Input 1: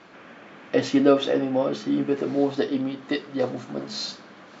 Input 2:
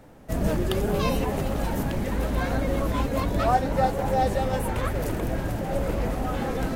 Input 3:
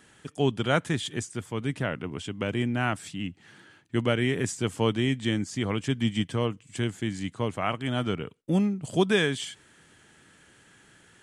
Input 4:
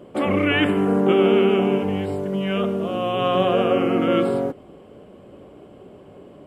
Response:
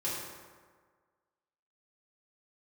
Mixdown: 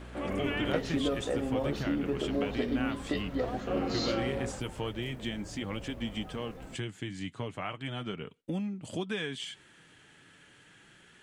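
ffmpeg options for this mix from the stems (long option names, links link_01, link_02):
-filter_complex "[0:a]acompressor=threshold=-25dB:ratio=6,aeval=exprs='val(0)+0.00794*(sin(2*PI*60*n/s)+sin(2*PI*2*60*n/s)/2+sin(2*PI*3*60*n/s)/3+sin(2*PI*4*60*n/s)/4+sin(2*PI*5*60*n/s)/5)':channel_layout=same,volume=-3dB[link_01];[1:a]acrusher=bits=7:mix=0:aa=0.000001,volume=-19dB[link_02];[2:a]equalizer=frequency=2900:width=1.1:gain=5,acompressor=threshold=-32dB:ratio=3,flanger=delay=3.5:depth=3.6:regen=-51:speed=0.34:shape=sinusoidal,volume=2dB[link_03];[3:a]volume=-14dB,asplit=3[link_04][link_05][link_06];[link_04]atrim=end=0.73,asetpts=PTS-STARTPTS,afade=type=out:start_time=0.726:duration=0.004:curve=hsin[link_07];[link_05]atrim=start=0.73:end=3.67,asetpts=PTS-STARTPTS,volume=0[link_08];[link_06]atrim=start=3.67,asetpts=PTS-STARTPTS,afade=type=in:duration=0.004:curve=hsin[link_09];[link_07][link_08][link_09]concat=n=3:v=0:a=1[link_10];[link_01][link_02][link_03][link_10]amix=inputs=4:normalize=0,highshelf=frequency=5200:gain=-5"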